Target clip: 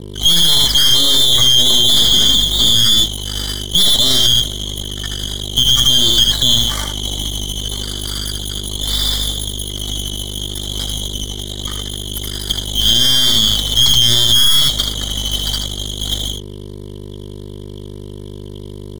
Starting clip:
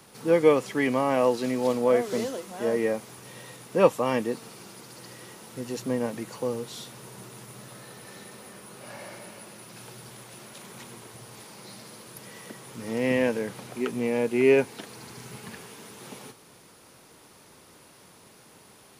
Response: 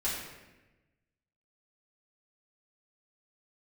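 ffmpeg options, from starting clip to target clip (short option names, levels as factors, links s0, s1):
-filter_complex "[0:a]afftfilt=real='real(if(lt(b,272),68*(eq(floor(b/68),0)*2+eq(floor(b/68),1)*3+eq(floor(b/68),2)*0+eq(floor(b/68),3)*1)+mod(b,68),b),0)':imag='imag(if(lt(b,272),68*(eq(floor(b/68),0)*2+eq(floor(b/68),1)*3+eq(floor(b/68),2)*0+eq(floor(b/68),3)*1)+mod(b,68),b),0)':win_size=2048:overlap=0.75,afftdn=nr=24:nf=-41,highpass=1500,aecho=1:1:3.4:0.56,asplit=2[s0][s1];[s1]acontrast=89,volume=1.26[s2];[s0][s2]amix=inputs=2:normalize=0,aeval=exprs='val(0)+0.02*(sin(2*PI*50*n/s)+sin(2*PI*2*50*n/s)/2+sin(2*PI*3*50*n/s)/3+sin(2*PI*4*50*n/s)/4+sin(2*PI*5*50*n/s)/5)':c=same,acrusher=bits=4:mix=0:aa=0.5,aeval=exprs='(tanh(6.31*val(0)+0.75)-tanh(0.75))/6.31':c=same,asuperstop=centerf=2600:order=8:qfactor=4,aecho=1:1:77:0.531,alimiter=level_in=6.68:limit=0.891:release=50:level=0:latency=1,volume=0.891"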